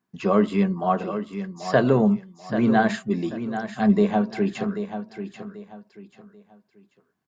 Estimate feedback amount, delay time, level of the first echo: 29%, 0.787 s, -10.0 dB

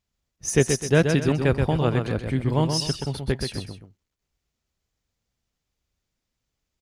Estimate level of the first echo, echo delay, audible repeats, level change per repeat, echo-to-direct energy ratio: -6.0 dB, 0.128 s, 2, -9.0 dB, -5.5 dB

